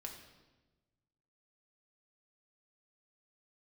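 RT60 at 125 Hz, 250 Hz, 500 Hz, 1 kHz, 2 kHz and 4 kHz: 1.9 s, 1.5 s, 1.3 s, 1.1 s, 1.0 s, 0.95 s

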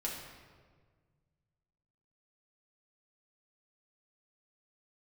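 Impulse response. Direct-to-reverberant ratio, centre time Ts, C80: -4.0 dB, 63 ms, 4.5 dB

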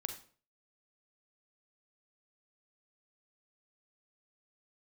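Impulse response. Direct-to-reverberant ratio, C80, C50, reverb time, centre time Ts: 5.5 dB, 13.0 dB, 9.0 dB, 0.45 s, 15 ms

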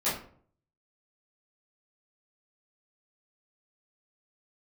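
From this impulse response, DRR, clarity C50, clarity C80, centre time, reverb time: -12.5 dB, 4.5 dB, 9.5 dB, 41 ms, 0.55 s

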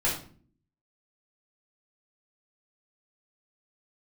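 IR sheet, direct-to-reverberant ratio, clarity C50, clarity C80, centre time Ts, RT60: -6.5 dB, 6.0 dB, 10.5 dB, 31 ms, 0.45 s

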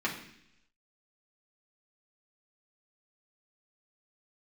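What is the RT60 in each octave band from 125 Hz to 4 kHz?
0.90 s, 0.90 s, 0.75 s, 0.70 s, 0.90 s, 0.95 s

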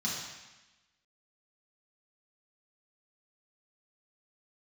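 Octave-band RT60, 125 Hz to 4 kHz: 1.0 s, 1.1 s, 1.0 s, 1.1 s, 1.2 s, 1.1 s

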